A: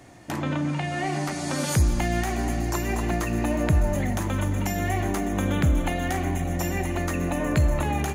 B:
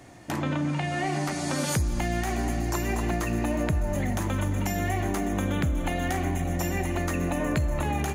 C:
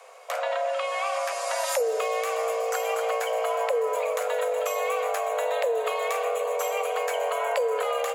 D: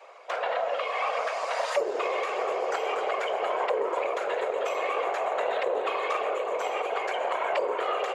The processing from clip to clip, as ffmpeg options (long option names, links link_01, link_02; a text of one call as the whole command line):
ffmpeg -i in.wav -af "acompressor=threshold=-22dB:ratio=6" out.wav
ffmpeg -i in.wav -af "afreqshift=400" out.wav
ffmpeg -i in.wav -af "afftfilt=real='hypot(re,im)*cos(2*PI*random(0))':imag='hypot(re,im)*sin(2*PI*random(1))':win_size=512:overlap=0.75,aeval=exprs='0.119*(cos(1*acos(clip(val(0)/0.119,-1,1)))-cos(1*PI/2))+0.0106*(cos(4*acos(clip(val(0)/0.119,-1,1)))-cos(4*PI/2))':channel_layout=same,highpass=480,lowpass=3800,volume=6dB" out.wav